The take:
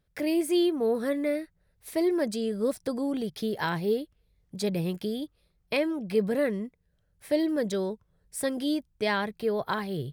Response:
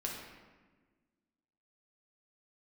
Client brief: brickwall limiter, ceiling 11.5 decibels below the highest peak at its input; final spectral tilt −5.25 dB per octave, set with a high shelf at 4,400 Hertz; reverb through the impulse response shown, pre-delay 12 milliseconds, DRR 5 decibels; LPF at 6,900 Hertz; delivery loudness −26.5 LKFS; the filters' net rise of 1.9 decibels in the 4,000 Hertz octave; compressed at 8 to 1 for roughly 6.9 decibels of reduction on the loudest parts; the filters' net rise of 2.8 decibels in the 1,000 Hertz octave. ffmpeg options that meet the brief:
-filter_complex "[0:a]lowpass=6900,equalizer=frequency=1000:width_type=o:gain=3.5,equalizer=frequency=4000:width_type=o:gain=6.5,highshelf=frequency=4400:gain=-8,acompressor=threshold=-27dB:ratio=8,alimiter=level_in=5.5dB:limit=-24dB:level=0:latency=1,volume=-5.5dB,asplit=2[link_01][link_02];[1:a]atrim=start_sample=2205,adelay=12[link_03];[link_02][link_03]afir=irnorm=-1:irlink=0,volume=-6.5dB[link_04];[link_01][link_04]amix=inputs=2:normalize=0,volume=9.5dB"

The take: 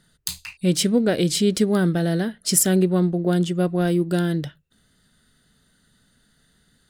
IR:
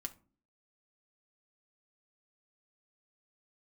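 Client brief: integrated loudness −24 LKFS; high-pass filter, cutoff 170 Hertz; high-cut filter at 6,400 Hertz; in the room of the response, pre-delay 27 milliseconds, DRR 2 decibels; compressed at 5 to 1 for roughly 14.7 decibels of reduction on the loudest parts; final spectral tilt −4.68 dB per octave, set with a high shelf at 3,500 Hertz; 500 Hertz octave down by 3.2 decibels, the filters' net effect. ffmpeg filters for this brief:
-filter_complex "[0:a]highpass=170,lowpass=6400,equalizer=frequency=500:width_type=o:gain=-4.5,highshelf=frequency=3500:gain=3,acompressor=threshold=-34dB:ratio=5,asplit=2[link_01][link_02];[1:a]atrim=start_sample=2205,adelay=27[link_03];[link_02][link_03]afir=irnorm=-1:irlink=0,volume=0.5dB[link_04];[link_01][link_04]amix=inputs=2:normalize=0,volume=9.5dB"

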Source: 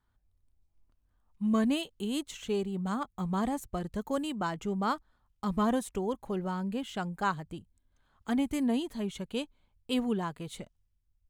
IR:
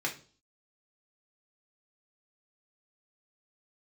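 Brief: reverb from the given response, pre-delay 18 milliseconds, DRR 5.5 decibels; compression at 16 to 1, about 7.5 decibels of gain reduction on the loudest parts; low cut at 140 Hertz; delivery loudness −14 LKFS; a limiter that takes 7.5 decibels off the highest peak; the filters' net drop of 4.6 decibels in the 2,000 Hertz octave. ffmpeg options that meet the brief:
-filter_complex "[0:a]highpass=140,equalizer=frequency=2000:width_type=o:gain=-7,acompressor=threshold=-32dB:ratio=16,alimiter=level_in=6.5dB:limit=-24dB:level=0:latency=1,volume=-6.5dB,asplit=2[link_01][link_02];[1:a]atrim=start_sample=2205,adelay=18[link_03];[link_02][link_03]afir=irnorm=-1:irlink=0,volume=-11dB[link_04];[link_01][link_04]amix=inputs=2:normalize=0,volume=25dB"

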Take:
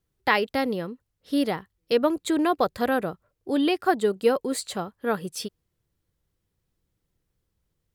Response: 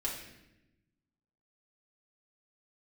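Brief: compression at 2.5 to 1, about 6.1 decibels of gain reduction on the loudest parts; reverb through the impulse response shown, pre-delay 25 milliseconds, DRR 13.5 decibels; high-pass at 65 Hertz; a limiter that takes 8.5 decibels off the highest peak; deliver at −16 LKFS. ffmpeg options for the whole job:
-filter_complex "[0:a]highpass=65,acompressor=threshold=-25dB:ratio=2.5,alimiter=limit=-21dB:level=0:latency=1,asplit=2[link_01][link_02];[1:a]atrim=start_sample=2205,adelay=25[link_03];[link_02][link_03]afir=irnorm=-1:irlink=0,volume=-16.5dB[link_04];[link_01][link_04]amix=inputs=2:normalize=0,volume=15.5dB"

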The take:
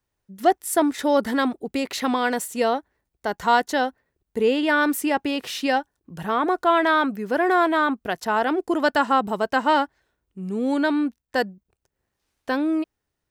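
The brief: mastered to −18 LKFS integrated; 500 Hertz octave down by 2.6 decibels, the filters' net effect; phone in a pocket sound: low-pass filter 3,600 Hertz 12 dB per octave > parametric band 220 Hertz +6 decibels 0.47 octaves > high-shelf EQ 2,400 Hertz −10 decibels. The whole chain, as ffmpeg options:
ffmpeg -i in.wav -af "lowpass=3600,equalizer=frequency=220:width_type=o:width=0.47:gain=6,equalizer=frequency=500:width_type=o:gain=-3,highshelf=frequency=2400:gain=-10,volume=6dB" out.wav

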